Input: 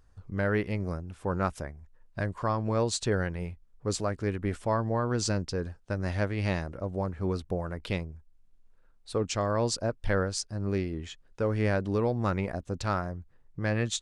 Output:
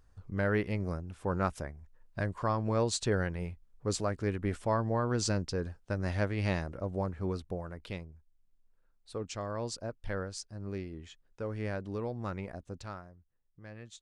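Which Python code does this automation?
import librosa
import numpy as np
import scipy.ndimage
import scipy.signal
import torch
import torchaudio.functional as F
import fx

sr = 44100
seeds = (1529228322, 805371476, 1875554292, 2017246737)

y = fx.gain(x, sr, db=fx.line((7.01, -2.0), (7.94, -9.0), (12.72, -9.0), (13.14, -19.5)))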